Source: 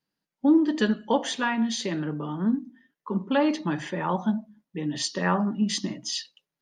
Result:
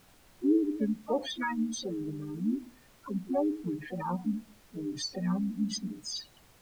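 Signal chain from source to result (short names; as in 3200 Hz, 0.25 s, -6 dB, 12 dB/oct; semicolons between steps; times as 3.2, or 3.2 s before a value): spectral contrast raised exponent 3.3; added noise pink -54 dBFS; harmoniser +5 st -10 dB; gain -6 dB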